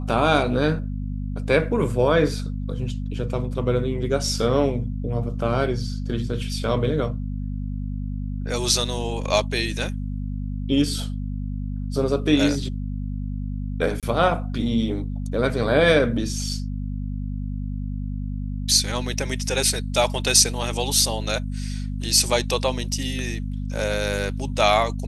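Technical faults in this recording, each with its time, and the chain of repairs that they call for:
mains hum 50 Hz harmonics 5 −28 dBFS
0:14.00–0:14.03: drop-out 27 ms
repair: hum removal 50 Hz, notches 5
repair the gap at 0:14.00, 27 ms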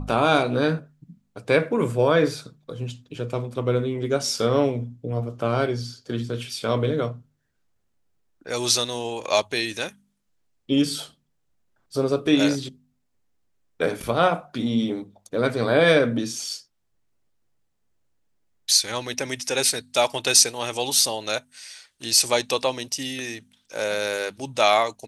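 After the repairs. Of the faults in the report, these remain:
none of them is left

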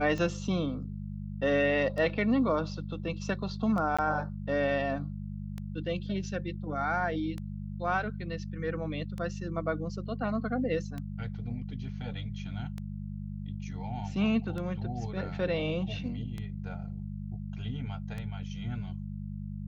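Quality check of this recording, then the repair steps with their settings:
mains hum 50 Hz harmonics 4 −38 dBFS
scratch tick 33 1/3 rpm −25 dBFS
0:03.97–0:03.99: drop-out 16 ms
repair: click removal
hum removal 50 Hz, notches 4
repair the gap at 0:03.97, 16 ms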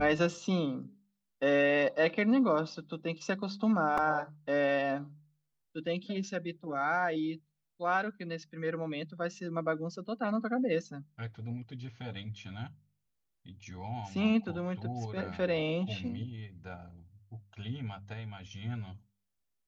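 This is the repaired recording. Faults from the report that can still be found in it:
none of them is left

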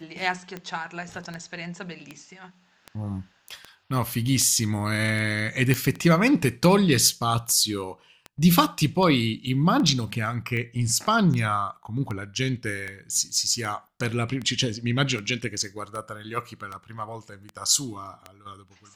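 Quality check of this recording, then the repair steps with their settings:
scratch tick 78 rpm −20 dBFS
0:05.74: click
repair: click removal

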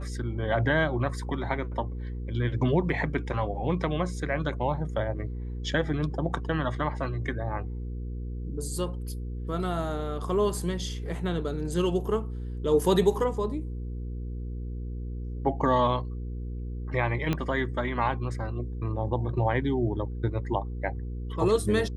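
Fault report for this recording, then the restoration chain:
mains hum 60 Hz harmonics 8 −34 dBFS
0:17.33: click −14 dBFS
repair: click removal
hum removal 60 Hz, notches 8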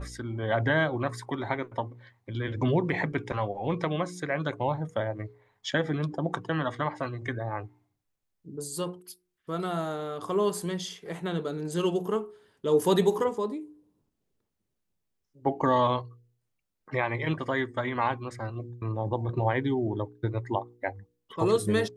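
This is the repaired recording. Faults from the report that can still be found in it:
0:17.33: click

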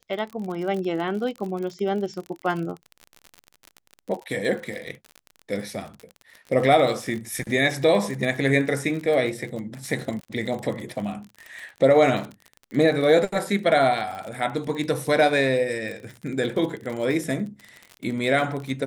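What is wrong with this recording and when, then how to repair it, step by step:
surface crackle 41 per second −30 dBFS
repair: click removal

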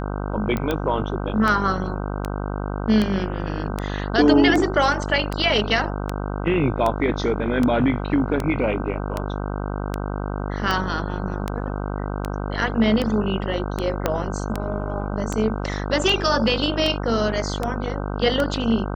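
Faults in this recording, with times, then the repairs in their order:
mains buzz 50 Hz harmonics 31 −27 dBFS
scratch tick 78 rpm −10 dBFS
0:00.57: click −12 dBFS
0:14.06: click −6 dBFS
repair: click removal
hum removal 50 Hz, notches 31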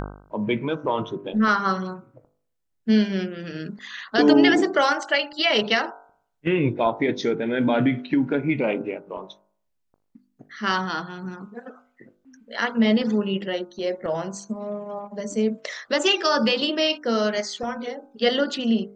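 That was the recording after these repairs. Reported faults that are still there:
0:14.06: click

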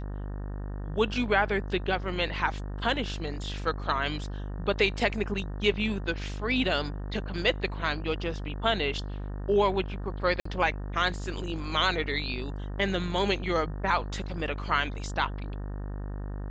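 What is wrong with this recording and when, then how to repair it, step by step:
mains buzz 50 Hz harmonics 37 −35 dBFS
0:10.40–0:10.45: drop-out 54 ms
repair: hum removal 50 Hz, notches 37
repair the gap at 0:10.40, 54 ms

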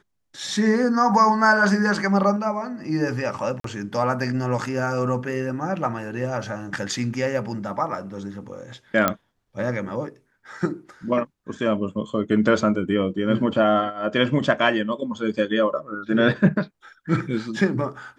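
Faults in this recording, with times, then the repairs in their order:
0:03.60–0:03.64: drop-out 43 ms
0:09.08: click −5 dBFS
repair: click removal
repair the gap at 0:03.60, 43 ms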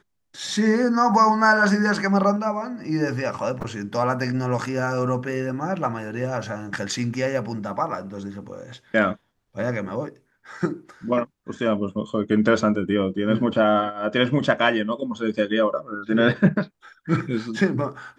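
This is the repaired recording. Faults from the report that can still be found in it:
none of them is left

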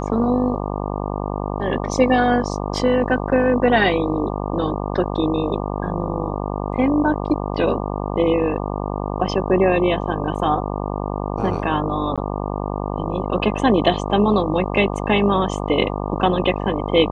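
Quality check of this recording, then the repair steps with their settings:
mains buzz 50 Hz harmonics 24 −25 dBFS
0:12.16–0:12.18: drop-out 16 ms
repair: hum removal 50 Hz, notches 24
repair the gap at 0:12.16, 16 ms

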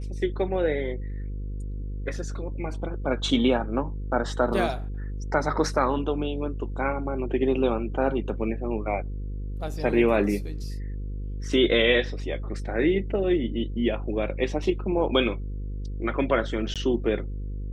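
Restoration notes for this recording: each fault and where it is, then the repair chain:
mains buzz 50 Hz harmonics 10 −32 dBFS
0:16.74–0:16.76: drop-out 17 ms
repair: hum removal 50 Hz, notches 10
repair the gap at 0:16.74, 17 ms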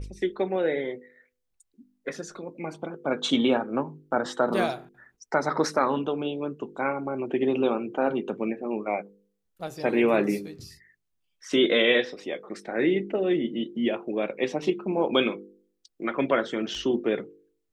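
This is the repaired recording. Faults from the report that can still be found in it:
none of them is left

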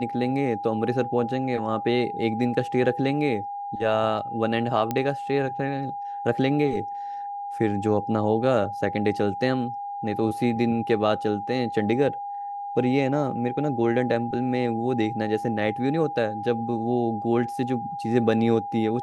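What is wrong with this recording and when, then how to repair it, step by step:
whistle 810 Hz −30 dBFS
0:04.91: click −12 dBFS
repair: click removal
notch filter 810 Hz, Q 30

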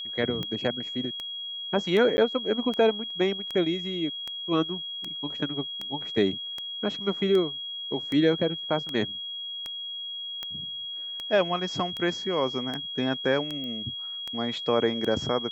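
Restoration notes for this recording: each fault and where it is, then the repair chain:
scratch tick 78 rpm −19 dBFS
whistle 3,300 Hz −33 dBFS
0:02.17–0:02.18: drop-out 10 ms
0:13.64: click −26 dBFS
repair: click removal
notch filter 3,300 Hz, Q 30
repair the gap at 0:02.17, 10 ms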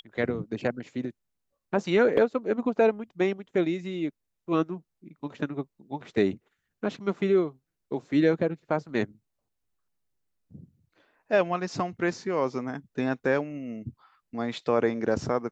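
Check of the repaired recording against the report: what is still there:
none of them is left

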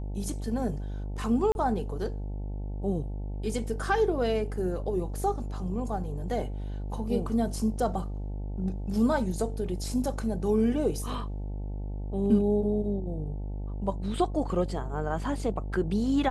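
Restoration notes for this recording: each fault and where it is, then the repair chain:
mains buzz 50 Hz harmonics 18 −34 dBFS
0:01.52–0:01.55: drop-out 31 ms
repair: hum removal 50 Hz, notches 18
repair the gap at 0:01.52, 31 ms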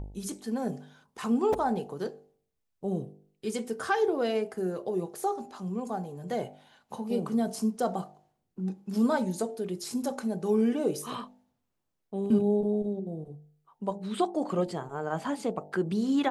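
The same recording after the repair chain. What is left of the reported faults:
none of them is left

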